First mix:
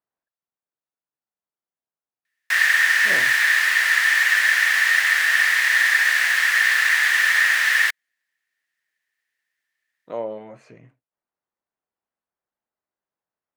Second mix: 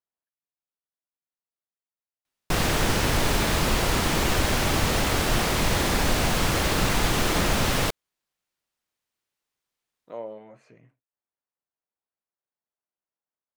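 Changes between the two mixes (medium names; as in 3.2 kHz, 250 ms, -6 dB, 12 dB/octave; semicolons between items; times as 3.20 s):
speech -7.5 dB; background: remove resonant high-pass 1.8 kHz, resonance Q 13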